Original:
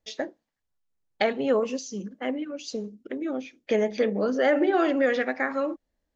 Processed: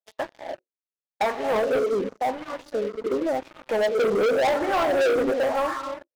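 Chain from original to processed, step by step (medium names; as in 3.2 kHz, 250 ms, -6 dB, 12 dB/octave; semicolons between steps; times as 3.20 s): gated-style reverb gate 330 ms rising, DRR 9.5 dB; wah-wah 0.91 Hz 380–1100 Hz, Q 4.8; waveshaping leveller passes 5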